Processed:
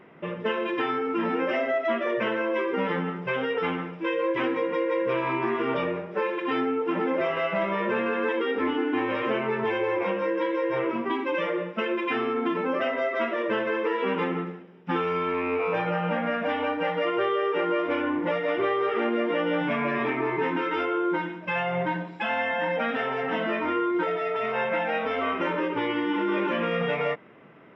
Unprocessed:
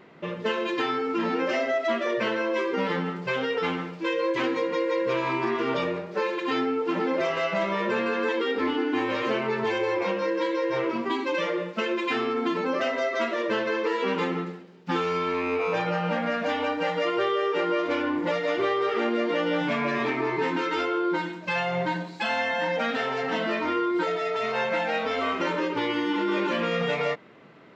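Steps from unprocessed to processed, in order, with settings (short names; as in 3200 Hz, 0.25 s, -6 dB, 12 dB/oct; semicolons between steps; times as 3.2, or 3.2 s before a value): polynomial smoothing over 25 samples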